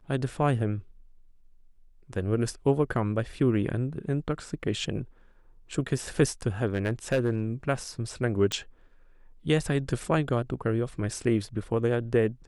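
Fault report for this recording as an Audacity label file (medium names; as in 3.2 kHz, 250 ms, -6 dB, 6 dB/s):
6.670000	7.410000	clipped -19.5 dBFS
8.520000	8.520000	pop -14 dBFS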